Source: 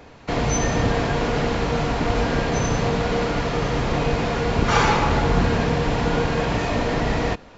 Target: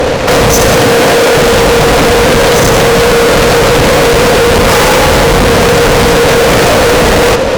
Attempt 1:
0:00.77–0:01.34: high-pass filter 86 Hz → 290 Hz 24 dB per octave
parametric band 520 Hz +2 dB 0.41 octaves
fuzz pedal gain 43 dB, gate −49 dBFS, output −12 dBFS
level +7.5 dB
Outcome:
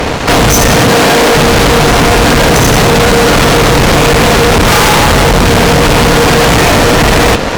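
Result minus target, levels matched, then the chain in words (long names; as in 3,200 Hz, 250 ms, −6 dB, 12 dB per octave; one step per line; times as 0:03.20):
500 Hz band −3.0 dB
0:00.77–0:01.34: high-pass filter 86 Hz → 290 Hz 24 dB per octave
parametric band 520 Hz +13 dB 0.41 octaves
fuzz pedal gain 43 dB, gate −49 dBFS, output −12 dBFS
level +7.5 dB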